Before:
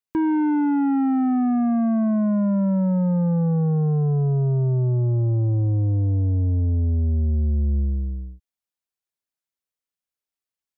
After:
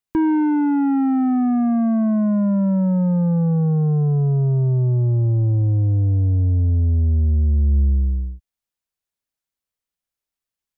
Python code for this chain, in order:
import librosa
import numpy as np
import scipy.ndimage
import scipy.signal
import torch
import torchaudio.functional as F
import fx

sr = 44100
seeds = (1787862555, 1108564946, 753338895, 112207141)

y = fx.low_shelf(x, sr, hz=100.0, db=8.5)
y = fx.rider(y, sr, range_db=10, speed_s=0.5)